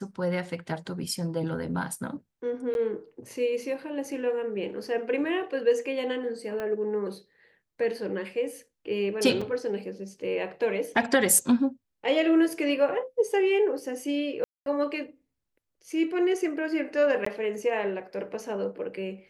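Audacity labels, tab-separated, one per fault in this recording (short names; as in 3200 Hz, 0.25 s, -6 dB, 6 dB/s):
2.740000	2.750000	gap 11 ms
6.600000	6.600000	pop -21 dBFS
9.410000	9.410000	gap 4.6 ms
14.440000	14.660000	gap 0.222 s
17.250000	17.260000	gap 14 ms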